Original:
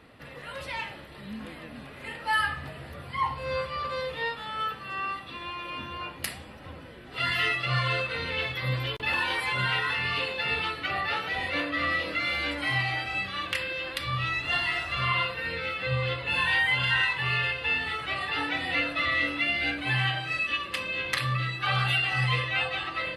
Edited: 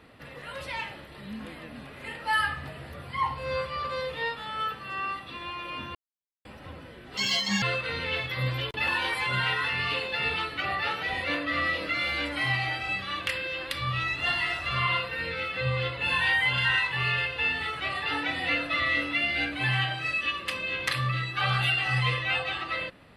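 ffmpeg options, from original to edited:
ffmpeg -i in.wav -filter_complex "[0:a]asplit=5[link_01][link_02][link_03][link_04][link_05];[link_01]atrim=end=5.95,asetpts=PTS-STARTPTS,afade=type=out:start_time=5.946:duration=0.004:curve=hsin[link_06];[link_02]atrim=start=5.95:end=6.45,asetpts=PTS-STARTPTS,volume=0[link_07];[link_03]atrim=start=6.45:end=7.174,asetpts=PTS-STARTPTS,afade=type=in:duration=0.004:curve=hsin[link_08];[link_04]atrim=start=7.17:end=7.88,asetpts=PTS-STARTPTS,asetrate=69237,aresample=44100,atrim=end_sample=19943,asetpts=PTS-STARTPTS[link_09];[link_05]atrim=start=7.876[link_10];[link_06][link_07][link_08]concat=n=3:v=0:a=1[link_11];[link_11][link_09]acrossfade=duration=0.004:curve1=hsin:curve2=hsin[link_12];[link_12][link_10]acrossfade=duration=0.004:curve1=hsin:curve2=hsin" out.wav

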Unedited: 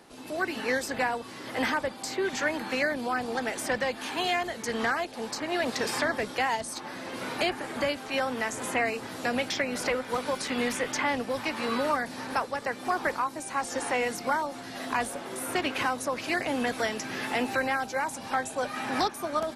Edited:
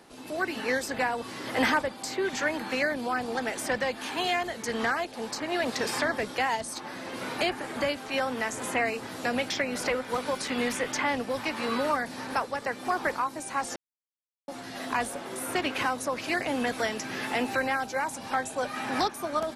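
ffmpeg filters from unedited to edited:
ffmpeg -i in.wav -filter_complex "[0:a]asplit=5[link_01][link_02][link_03][link_04][link_05];[link_01]atrim=end=1.182[link_06];[link_02]atrim=start=1.178:end=1.822,asetpts=PTS-STARTPTS,volume=3.5dB[link_07];[link_03]atrim=start=1.818:end=13.76,asetpts=PTS-STARTPTS,afade=type=out:start_time=11.938:duration=0.004:curve=hsin[link_08];[link_04]atrim=start=13.76:end=14.48,asetpts=PTS-STARTPTS,volume=0[link_09];[link_05]atrim=start=14.48,asetpts=PTS-STARTPTS,afade=type=in:duration=0.004:curve=hsin[link_10];[link_06][link_07]acrossfade=duration=0.004:curve1=hsin:curve2=hsin[link_11];[link_08][link_09][link_10]concat=n=3:v=0:a=1[link_12];[link_11][link_12]acrossfade=duration=0.004:curve1=hsin:curve2=hsin" out.wav

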